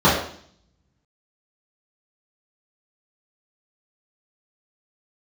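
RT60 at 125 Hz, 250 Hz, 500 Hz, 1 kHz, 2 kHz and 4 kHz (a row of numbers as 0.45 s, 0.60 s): 0.85 s, 0.75 s, 0.55 s, 0.55 s, 0.55 s, 0.65 s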